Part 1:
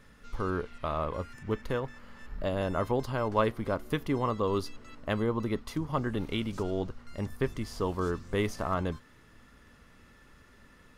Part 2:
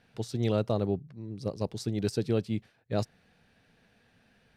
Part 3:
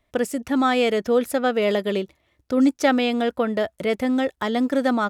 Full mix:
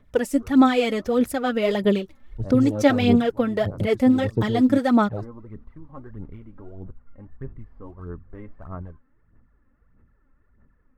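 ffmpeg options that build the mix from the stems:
-filter_complex "[0:a]lowpass=f=1.8k:w=0.5412,lowpass=f=1.8k:w=1.3066,volume=-15dB[a];[1:a]afwtdn=0.0224,adelay=2200,volume=-5.5dB[b];[2:a]volume=-4dB,asplit=2[c][d];[d]apad=whole_len=484108[e];[a][e]sidechaincompress=threshold=-41dB:ratio=4:attack=16:release=134[f];[f][b][c]amix=inputs=3:normalize=0,lowshelf=f=230:g=10,aphaser=in_gain=1:out_gain=1:delay=3.8:decay=0.58:speed=1.6:type=sinusoidal"

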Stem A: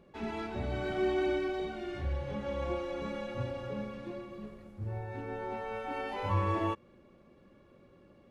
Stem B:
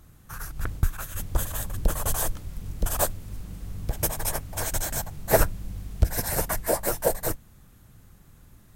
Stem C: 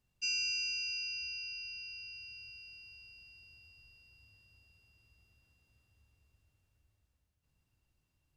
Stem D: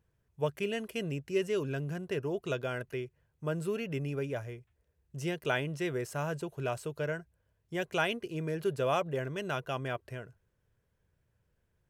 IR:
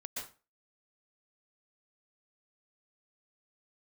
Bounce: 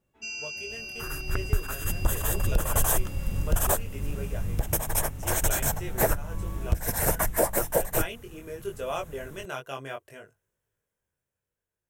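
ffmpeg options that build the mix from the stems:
-filter_complex "[0:a]volume=-19.5dB[a];[1:a]adelay=700,volume=-1.5dB[b];[2:a]volume=0.5dB[c];[3:a]bass=f=250:g=-9,treble=f=4k:g=8,flanger=delay=19:depth=3.4:speed=0.67,volume=-7dB[d];[a][b][c][d]amix=inputs=4:normalize=0,equalizer=f=4.5k:t=o:w=0.45:g=-8.5,dynaudnorm=f=290:g=13:m=12dB,alimiter=limit=-11.5dB:level=0:latency=1:release=393"

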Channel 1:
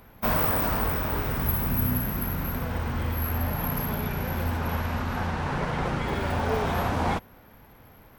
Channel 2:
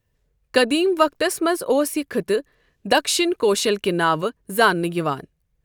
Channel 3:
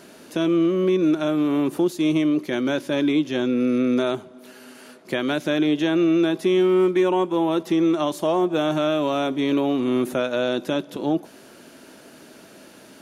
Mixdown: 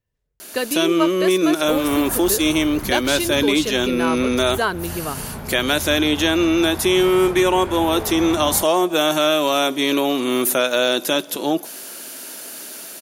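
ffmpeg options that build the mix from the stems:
-filter_complex "[0:a]aemphasis=mode=reproduction:type=cd,adelay=1450,volume=-7dB[a];[1:a]volume=-9dB,asplit=2[b][c];[2:a]aemphasis=mode=production:type=riaa,adelay=400,volume=2dB[d];[c]apad=whole_len=425045[e];[a][e]sidechaincompress=threshold=-32dB:ratio=8:attack=16:release=111[f];[f][b][d]amix=inputs=3:normalize=0,dynaudnorm=f=130:g=9:m=4.5dB"

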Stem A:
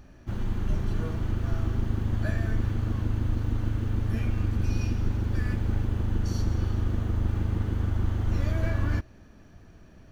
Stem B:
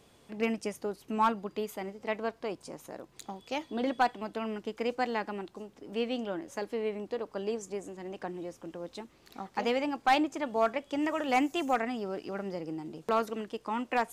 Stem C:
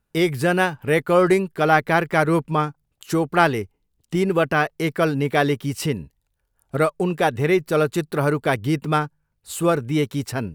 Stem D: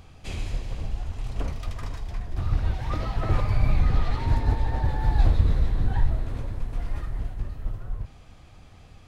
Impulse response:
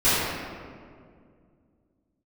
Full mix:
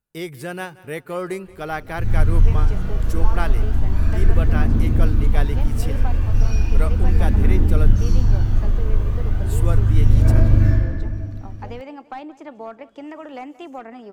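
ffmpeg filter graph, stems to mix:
-filter_complex "[0:a]aphaser=in_gain=1:out_gain=1:delay=2:decay=0.62:speed=0.35:type=triangular,adelay=1700,volume=-12.5dB,asplit=2[a][b];[b]volume=-6dB[c];[1:a]lowpass=f=1.6k:p=1,acrossover=split=320|1100[d][e][f];[d]acompressor=threshold=-42dB:ratio=4[g];[e]acompressor=threshold=-33dB:ratio=4[h];[f]acompressor=threshold=-42dB:ratio=4[i];[g][h][i]amix=inputs=3:normalize=0,adelay=2050,volume=-1dB,asplit=2[j][k];[k]volume=-19dB[l];[2:a]volume=-11dB,asplit=3[m][n][o];[m]atrim=end=7.91,asetpts=PTS-STARTPTS,afade=t=out:st=7.906:d=0.004:c=hsin[p];[n]atrim=start=7.91:end=9.29,asetpts=PTS-STARTPTS,volume=0[q];[o]atrim=start=9.29,asetpts=PTS-STARTPTS,afade=t=in:d=0.004:c=hsin[r];[p][q][r]concat=n=3:v=0:a=1,asplit=2[s][t];[t]volume=-20dB[u];[3:a]lowpass=2k,adelay=1200,volume=-16.5dB[v];[4:a]atrim=start_sample=2205[w];[c][w]afir=irnorm=-1:irlink=0[x];[l][u]amix=inputs=2:normalize=0,aecho=0:1:178|356|534|712|890|1068:1|0.41|0.168|0.0689|0.0283|0.0116[y];[a][j][s][v][x][y]amix=inputs=6:normalize=0,highshelf=f=6.8k:g=7"

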